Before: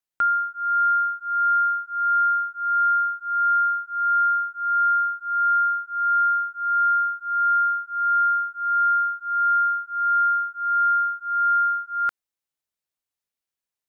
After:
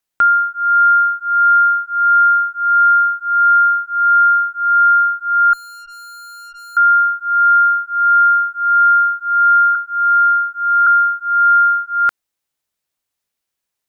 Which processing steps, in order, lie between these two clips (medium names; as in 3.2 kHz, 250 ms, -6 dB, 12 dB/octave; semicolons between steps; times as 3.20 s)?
5.53–6.77 s: valve stage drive 44 dB, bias 0.35; 9.75–10.87 s: high-pass 1.2 kHz 24 dB/octave; trim +9 dB